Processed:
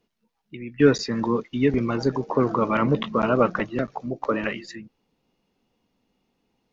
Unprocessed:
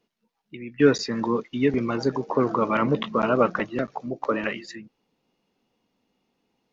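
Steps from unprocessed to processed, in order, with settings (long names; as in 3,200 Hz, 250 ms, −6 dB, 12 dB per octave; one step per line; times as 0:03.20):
low-shelf EQ 98 Hz +10.5 dB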